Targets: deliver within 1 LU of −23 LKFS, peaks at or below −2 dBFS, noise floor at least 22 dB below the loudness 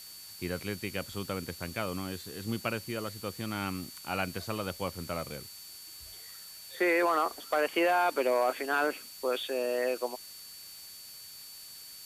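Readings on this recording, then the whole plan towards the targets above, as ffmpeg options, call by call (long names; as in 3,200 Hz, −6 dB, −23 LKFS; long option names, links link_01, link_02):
interfering tone 4,500 Hz; level of the tone −49 dBFS; background noise floor −48 dBFS; target noise floor −54 dBFS; integrated loudness −32.0 LKFS; sample peak −16.0 dBFS; target loudness −23.0 LKFS
→ -af "bandreject=frequency=4500:width=30"
-af "afftdn=noise_reduction=6:noise_floor=-48"
-af "volume=9dB"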